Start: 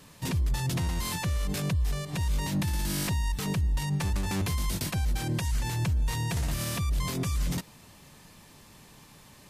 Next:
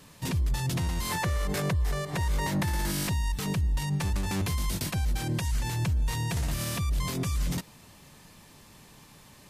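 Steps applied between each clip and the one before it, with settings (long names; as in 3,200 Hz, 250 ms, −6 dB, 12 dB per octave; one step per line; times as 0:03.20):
gain on a spectral selection 0:01.10–0:02.91, 340–2,300 Hz +6 dB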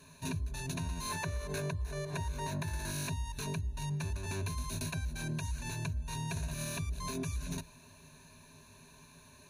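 EQ curve with evenly spaced ripples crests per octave 1.5, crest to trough 15 dB
downward compressor, threshold −26 dBFS, peak gain reduction 7.5 dB
level −7 dB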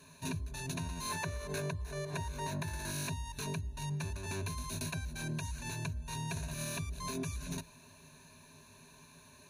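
low-shelf EQ 66 Hz −8 dB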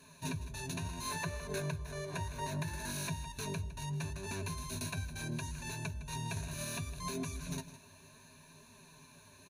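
flanger 0.69 Hz, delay 4 ms, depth 7.1 ms, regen +54%
single-tap delay 159 ms −14.5 dB
level +3.5 dB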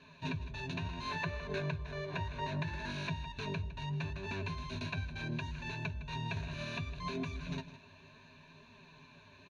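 transistor ladder low-pass 4,100 Hz, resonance 30%
level +7.5 dB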